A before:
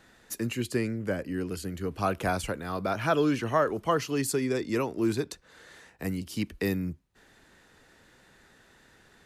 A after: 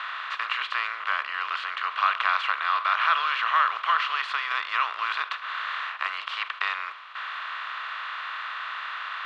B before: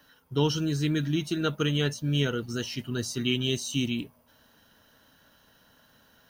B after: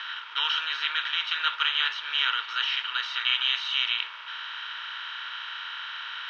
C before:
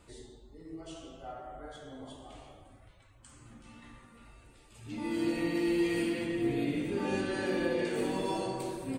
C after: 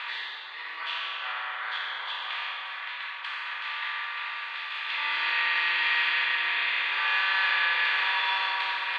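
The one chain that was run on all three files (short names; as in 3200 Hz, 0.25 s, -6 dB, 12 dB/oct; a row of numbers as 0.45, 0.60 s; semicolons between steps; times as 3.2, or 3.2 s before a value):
per-bin compression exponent 0.4; elliptic band-pass 1100–3700 Hz, stop band 80 dB; match loudness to -27 LUFS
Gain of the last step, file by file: +5.0, +4.0, +13.0 dB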